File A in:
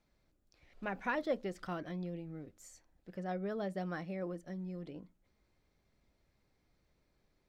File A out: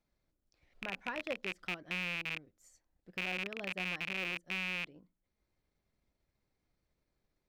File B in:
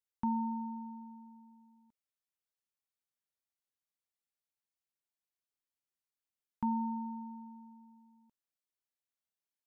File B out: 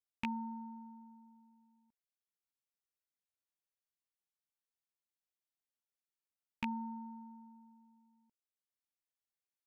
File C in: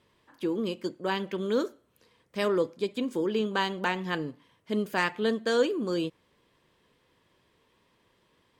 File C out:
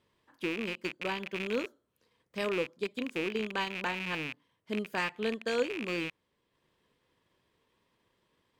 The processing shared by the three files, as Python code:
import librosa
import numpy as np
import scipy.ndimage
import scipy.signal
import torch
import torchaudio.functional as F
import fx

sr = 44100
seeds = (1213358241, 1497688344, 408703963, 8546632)

y = fx.rattle_buzz(x, sr, strikes_db=-46.0, level_db=-19.0)
y = fx.transient(y, sr, attack_db=2, sustain_db=-4)
y = y * 10.0 ** (-6.5 / 20.0)